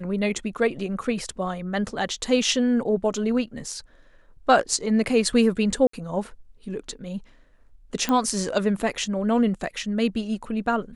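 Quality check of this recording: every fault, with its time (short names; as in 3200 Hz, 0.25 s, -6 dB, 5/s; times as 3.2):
5.87–5.93 gap 64 ms
8.09 pop -11 dBFS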